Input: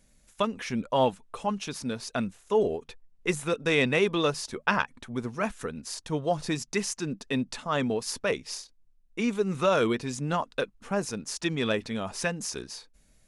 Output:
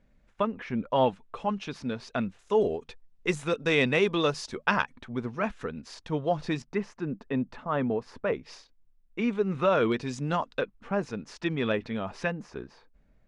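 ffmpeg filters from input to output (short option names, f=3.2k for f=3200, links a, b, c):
-af "asetnsamples=n=441:p=0,asendcmd='0.9 lowpass f 3400;2.39 lowpass f 6100;4.94 lowpass f 3500;6.62 lowpass f 1600;8.43 lowpass f 2800;9.92 lowpass f 5300;10.59 lowpass f 2800;12.32 lowpass f 1600',lowpass=2k"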